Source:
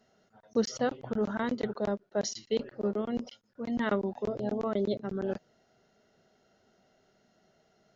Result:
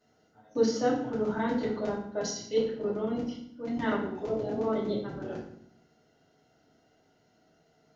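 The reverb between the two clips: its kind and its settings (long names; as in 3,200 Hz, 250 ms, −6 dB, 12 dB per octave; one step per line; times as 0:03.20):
feedback delay network reverb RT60 0.66 s, low-frequency decay 1.55×, high-frequency decay 0.85×, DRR −7 dB
level −7 dB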